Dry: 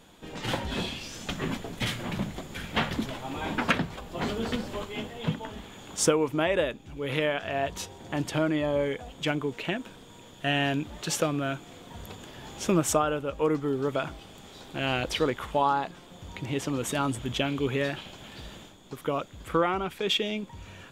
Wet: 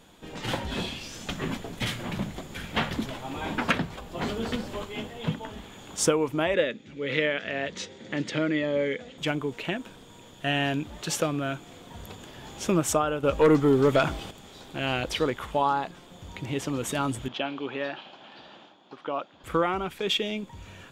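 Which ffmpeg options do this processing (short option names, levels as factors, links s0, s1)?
-filter_complex "[0:a]asettb=1/sr,asplit=3[s0][s1][s2];[s0]atrim=end=6.544[s3];[s1]atrim=start=6.54:end=9.18,asetpts=PTS-STARTPTS,afade=t=in:d=0.004:c=qsin,afade=t=out:st=2.636:d=0.004:c=qsin,highpass=150,equalizer=f=220:t=q:w=4:g=6,equalizer=f=510:t=q:w=4:g=5,equalizer=f=730:t=q:w=4:g=-9,equalizer=f=1000:t=q:w=4:g=-8,equalizer=f=2000:t=q:w=4:g=8,equalizer=f=3900:t=q:w=4:g=4,lowpass=f=6900:w=0.5412,lowpass=f=6900:w=1.3066[s4];[s2]atrim=start=9.176[s5];[s3][s4]acrossfade=d=0.004:c1=hsin:c2=qsin[s6];[s6][s5]acrossfade=d=0.004:c1=qsin:c2=hsin,asettb=1/sr,asplit=3[s7][s8][s9];[s7]atrim=end=13.234[s10];[s8]atrim=start=13.23:end=14.31,asetpts=PTS-STARTPTS,afade=t=in:d=0.004:c=qsin,afade=t=out:st=1.076:d=0.004:c=qsin,aeval=exprs='0.224*sin(PI/2*1.78*val(0)/0.224)':c=same[s11];[s9]atrim=start=14.306[s12];[s10][s11]acrossfade=d=0.004:c1=hsin:c2=qsin[s13];[s13][s12]acrossfade=d=0.004:c1=qsin:c2=hsin,asettb=1/sr,asplit=3[s14][s15][s16];[s14]atrim=end=17.284[s17];[s15]atrim=start=17.28:end=19.44,asetpts=PTS-STARTPTS,afade=t=in:d=0.004:c=qsin,afade=t=out:st=2.156:d=0.004:c=qsin,highpass=320,equalizer=f=440:t=q:w=4:g=-6,equalizer=f=800:t=q:w=4:g=4,equalizer=f=2100:t=q:w=4:g=-6,equalizer=f=3600:t=q:w=4:g=-4,lowpass=f=4300:w=0.5412,lowpass=f=4300:w=1.3066[s18];[s16]atrim=start=19.436[s19];[s17][s18]acrossfade=d=0.004:c1=hsin:c2=qsin[s20];[s20][s19]acrossfade=d=0.004:c1=qsin:c2=hsin"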